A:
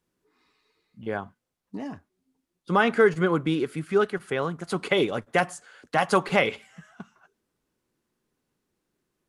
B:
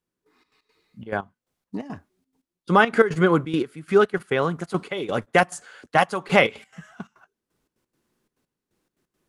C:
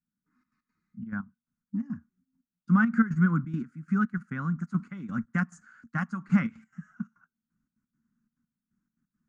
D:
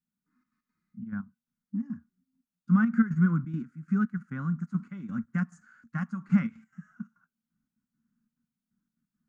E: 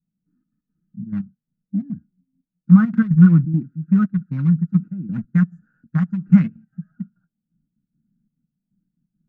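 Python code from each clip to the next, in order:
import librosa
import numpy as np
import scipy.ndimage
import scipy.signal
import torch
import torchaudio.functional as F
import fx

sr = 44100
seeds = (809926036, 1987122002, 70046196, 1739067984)

y1 = fx.step_gate(x, sr, bpm=174, pattern='...xx.x.xxxx.x', floor_db=-12.0, edge_ms=4.5)
y1 = F.gain(torch.from_numpy(y1), 5.0).numpy()
y2 = fx.curve_eq(y1, sr, hz=(110.0, 230.0, 420.0, 770.0, 1400.0, 3400.0, 6700.0, 11000.0), db=(0, 11, -27, -20, 1, -26, -8, -29))
y2 = F.gain(torch.from_numpy(y2), -6.0).numpy()
y3 = fx.hpss(y2, sr, part='percussive', gain_db=-7)
y4 = fx.wiener(y3, sr, points=41)
y4 = fx.low_shelf(y4, sr, hz=270.0, db=10.0)
y4 = y4 + 0.51 * np.pad(y4, (int(6.3 * sr / 1000.0), 0))[:len(y4)]
y4 = F.gain(torch.from_numpy(y4), 3.5).numpy()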